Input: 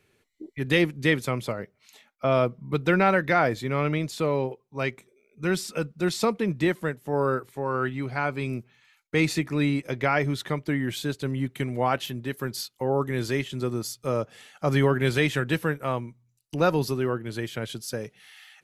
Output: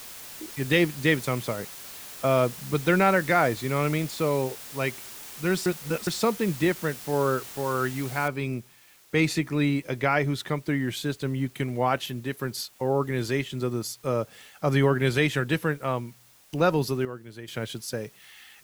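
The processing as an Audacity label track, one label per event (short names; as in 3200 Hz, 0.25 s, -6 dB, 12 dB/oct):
5.660000	6.070000	reverse
8.280000	8.280000	noise floor step -42 dB -57 dB
17.050000	17.480000	gain -10 dB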